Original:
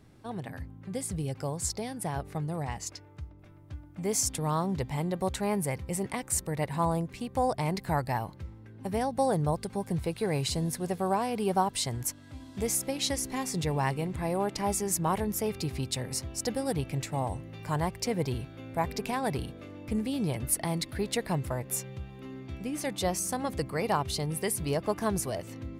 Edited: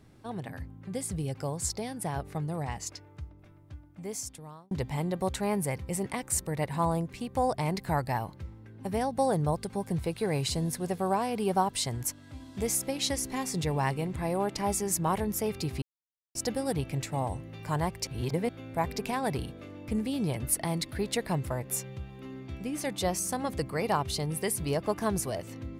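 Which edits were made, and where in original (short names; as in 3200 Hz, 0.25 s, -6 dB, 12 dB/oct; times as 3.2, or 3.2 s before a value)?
3.23–4.71 fade out
15.82–16.35 mute
18.07–18.49 reverse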